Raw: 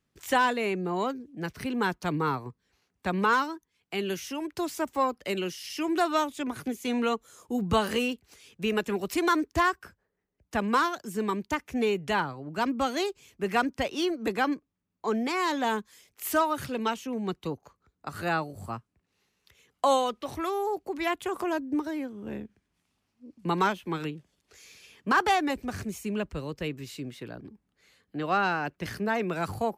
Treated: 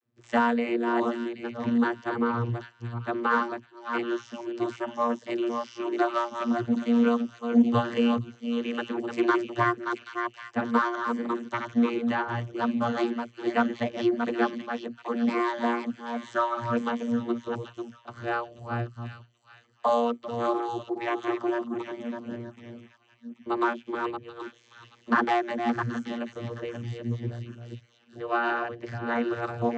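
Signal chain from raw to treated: chunks repeated in reverse 331 ms, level -5.5 dB; dynamic bell 1.8 kHz, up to +5 dB, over -37 dBFS, Q 0.89; vocoder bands 32, saw 118 Hz; feedback echo behind a high-pass 780 ms, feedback 34%, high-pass 2.6 kHz, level -6 dB

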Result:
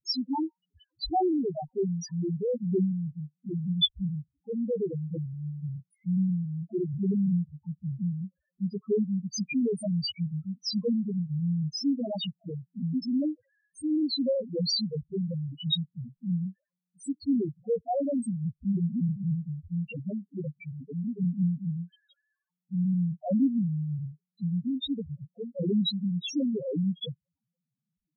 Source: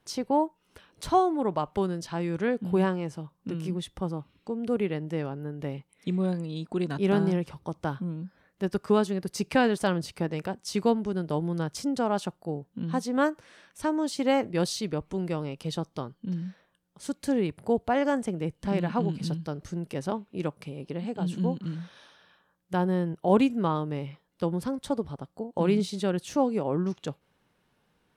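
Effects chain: waveshaping leveller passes 2; loudest bins only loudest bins 1; resonant high shelf 2.1 kHz +13.5 dB, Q 3

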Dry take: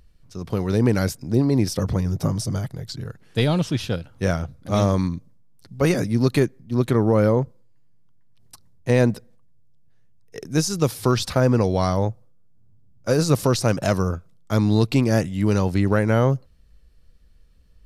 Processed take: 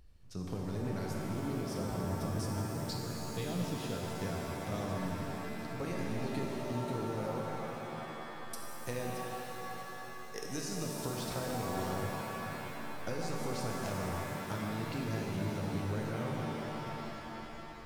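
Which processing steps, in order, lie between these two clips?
7.16–10.61 s: tone controls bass -6 dB, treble +8 dB; compression 8:1, threshold -31 dBFS, peak gain reduction 18 dB; pitch-shifted reverb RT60 3.8 s, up +7 st, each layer -2 dB, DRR -1.5 dB; trim -7 dB

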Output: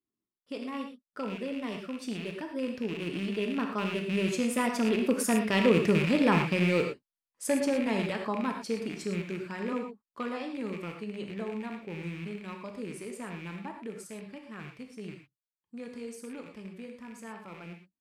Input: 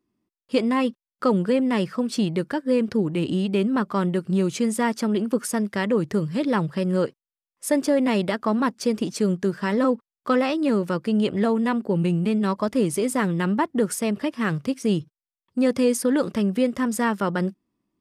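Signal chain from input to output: rattle on loud lows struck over -30 dBFS, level -19 dBFS; Doppler pass-by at 5.89 s, 17 m/s, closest 17 m; gated-style reverb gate 140 ms flat, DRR 2.5 dB; trim -2 dB

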